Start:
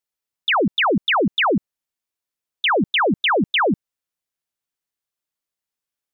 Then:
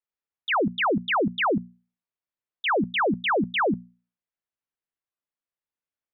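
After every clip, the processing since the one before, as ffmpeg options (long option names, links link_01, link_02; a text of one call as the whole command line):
ffmpeg -i in.wav -af "lowpass=2500,bandreject=frequency=60:width_type=h:width=6,bandreject=frequency=120:width_type=h:width=6,bandreject=frequency=180:width_type=h:width=6,bandreject=frequency=240:width_type=h:width=6,volume=-4.5dB" out.wav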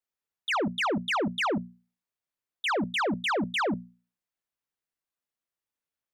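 ffmpeg -i in.wav -af "asoftclip=type=tanh:threshold=-25.5dB,volume=1dB" out.wav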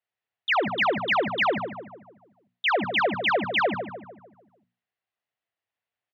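ffmpeg -i in.wav -filter_complex "[0:a]highpass=100,equalizer=frequency=110:width_type=q:width=4:gain=10,equalizer=frequency=170:width_type=q:width=4:gain=-5,equalizer=frequency=270:width_type=q:width=4:gain=-6,equalizer=frequency=710:width_type=q:width=4:gain=8,equalizer=frequency=1900:width_type=q:width=4:gain=6,equalizer=frequency=2800:width_type=q:width=4:gain=4,lowpass=frequency=4200:width=0.5412,lowpass=frequency=4200:width=1.3066,asplit=2[link_01][link_02];[link_02]adelay=149,lowpass=frequency=1500:poles=1,volume=-8dB,asplit=2[link_03][link_04];[link_04]adelay=149,lowpass=frequency=1500:poles=1,volume=0.49,asplit=2[link_05][link_06];[link_06]adelay=149,lowpass=frequency=1500:poles=1,volume=0.49,asplit=2[link_07][link_08];[link_08]adelay=149,lowpass=frequency=1500:poles=1,volume=0.49,asplit=2[link_09][link_10];[link_10]adelay=149,lowpass=frequency=1500:poles=1,volume=0.49,asplit=2[link_11][link_12];[link_12]adelay=149,lowpass=frequency=1500:poles=1,volume=0.49[link_13];[link_01][link_03][link_05][link_07][link_09][link_11][link_13]amix=inputs=7:normalize=0,volume=1.5dB" out.wav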